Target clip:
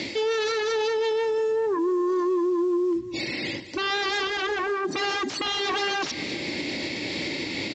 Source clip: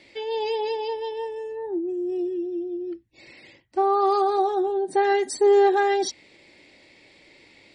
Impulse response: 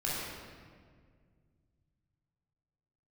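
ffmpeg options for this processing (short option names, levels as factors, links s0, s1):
-filter_complex "[0:a]bass=f=250:g=7,treble=f=4000:g=11,aeval=exprs='0.398*sin(PI/2*7.94*val(0)/0.398)':c=same,areverse,acompressor=threshold=0.0708:ratio=6,areverse,highpass=98,equalizer=f=290:t=o:w=0.82:g=6,aecho=1:1:197|394|591|788:0.112|0.055|0.0269|0.0132,acrossover=split=5600[s0][s1];[s1]acompressor=threshold=0.00447:ratio=4:attack=1:release=60[s2];[s0][s2]amix=inputs=2:normalize=0,alimiter=limit=0.0668:level=0:latency=1:release=350,volume=1.41" -ar 16000 -c:a pcm_mulaw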